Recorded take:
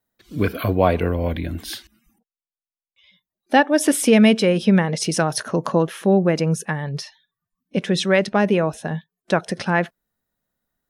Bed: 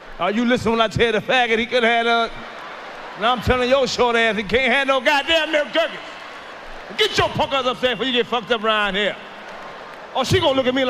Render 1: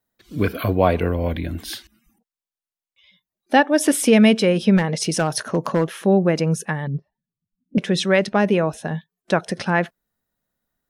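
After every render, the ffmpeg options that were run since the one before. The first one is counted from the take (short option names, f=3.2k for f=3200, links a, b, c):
-filter_complex "[0:a]asettb=1/sr,asplit=3[a][b][c];[a]atrim=end=4.774[d];[b]atrim=start=4.77:end=5.87,asetpts=PTS-STARTPTS,afade=t=in:d=0.004:c=qsin,afade=t=out:st=1.096:d=0.004:c=qsin,asoftclip=type=hard:threshold=-12.5dB[e];[c]atrim=start=5.866[f];[d][e]acrossfade=d=0.004:c1=hsin:c2=qsin[g];[g][f]acrossfade=d=0.004:c1=qsin:c2=hsin,asettb=1/sr,asplit=3[h][i][j];[h]atrim=end=6.874[k];[i]atrim=start=6.87:end=7.78,asetpts=PTS-STARTPTS,afade=t=in:d=0.004:c=qsin,afade=t=out:st=0.906:d=0.004:c=qsin,lowpass=f=260:t=q:w=2.1[l];[j]atrim=start=7.776[m];[k][l]acrossfade=d=0.004:c1=hsin:c2=qsin[n];[n][m]acrossfade=d=0.004:c1=qsin:c2=hsin"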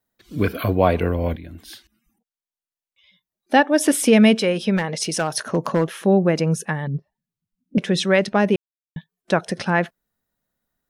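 -filter_complex "[0:a]asettb=1/sr,asplit=3[a][b][c];[a]atrim=end=4.394[d];[b]atrim=start=4.39:end=5.44,asetpts=PTS-STARTPTS,afade=t=in:d=0.004:c=qsin,afade=t=out:st=1.046:d=0.004:c=qsin,lowshelf=f=340:g=-7[e];[c]atrim=start=5.436[f];[d][e]acrossfade=d=0.004:c1=hsin:c2=qsin[g];[g][f]acrossfade=d=0.004:c1=qsin:c2=hsin,asplit=4[h][i][j][k];[h]atrim=end=1.36,asetpts=PTS-STARTPTS,afade=t=out:st=1.356:d=0.004:c=hsin:silence=0.251189[l];[i]atrim=start=1.36:end=8.56,asetpts=PTS-STARTPTS,afade=t=in:d=2.28:silence=0.251189,afade=t=out:st=7.196:d=0.004:c=hsin[m];[j]atrim=start=8.56:end=8.96,asetpts=PTS-STARTPTS,volume=0[n];[k]atrim=start=8.96,asetpts=PTS-STARTPTS,afade=t=in:d=0.004:c=hsin[o];[l][m][n][o]concat=n=4:v=0:a=1"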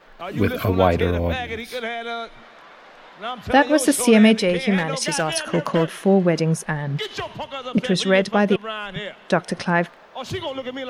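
-filter_complex "[1:a]volume=-11.5dB[a];[0:a][a]amix=inputs=2:normalize=0"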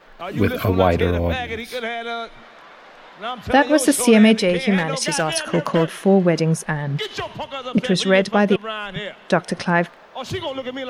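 -af "volume=1.5dB,alimiter=limit=-3dB:level=0:latency=1"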